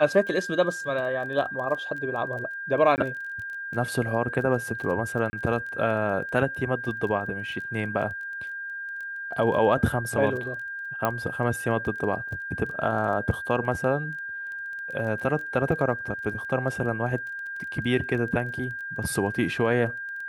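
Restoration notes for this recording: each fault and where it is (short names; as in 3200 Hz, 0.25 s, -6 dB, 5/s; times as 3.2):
crackle 16/s -35 dBFS
tone 1600 Hz -32 dBFS
2.96–2.98 gap 19 ms
5.3–5.33 gap 30 ms
11.05 pop -11 dBFS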